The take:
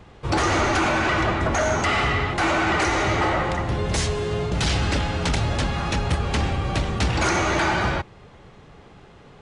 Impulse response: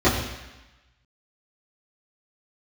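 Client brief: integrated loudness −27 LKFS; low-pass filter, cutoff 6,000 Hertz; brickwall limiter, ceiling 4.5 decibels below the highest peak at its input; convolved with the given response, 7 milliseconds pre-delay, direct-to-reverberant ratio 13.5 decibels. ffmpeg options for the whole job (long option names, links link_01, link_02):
-filter_complex "[0:a]lowpass=6000,alimiter=limit=-15dB:level=0:latency=1,asplit=2[link_01][link_02];[1:a]atrim=start_sample=2205,adelay=7[link_03];[link_02][link_03]afir=irnorm=-1:irlink=0,volume=-34dB[link_04];[link_01][link_04]amix=inputs=2:normalize=0,volume=-4dB"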